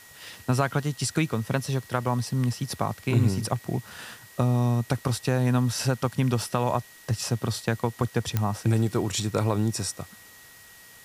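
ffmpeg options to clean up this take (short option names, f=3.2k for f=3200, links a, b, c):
-af "adeclick=t=4,bandreject=f=1.9k:w=30,afwtdn=0.0032"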